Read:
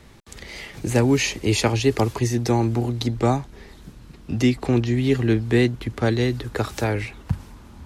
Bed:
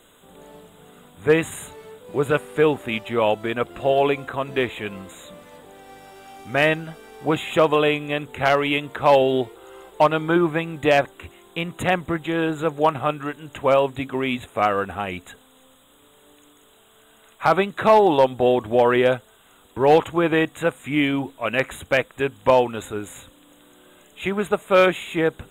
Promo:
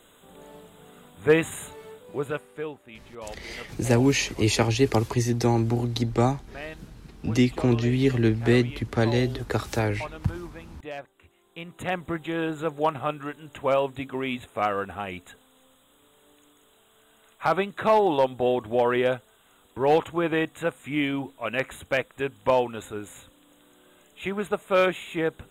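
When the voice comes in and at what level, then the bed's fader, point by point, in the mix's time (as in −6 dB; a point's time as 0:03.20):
2.95 s, −2.0 dB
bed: 0:01.91 −2 dB
0:02.84 −20 dB
0:11.03 −20 dB
0:12.09 −5.5 dB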